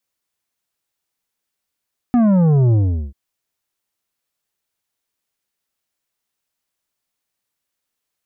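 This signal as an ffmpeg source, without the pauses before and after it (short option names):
-f lavfi -i "aevalsrc='0.266*clip((0.99-t)/0.4,0,1)*tanh(2.82*sin(2*PI*250*0.99/log(65/250)*(exp(log(65/250)*t/0.99)-1)))/tanh(2.82)':d=0.99:s=44100"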